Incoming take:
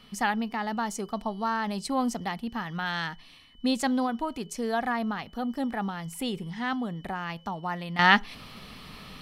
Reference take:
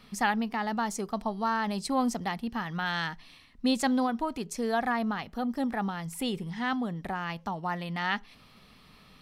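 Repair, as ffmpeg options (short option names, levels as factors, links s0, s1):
-af "bandreject=f=3000:w=30,asetnsamples=n=441:p=0,asendcmd='7.99 volume volume -11dB',volume=1"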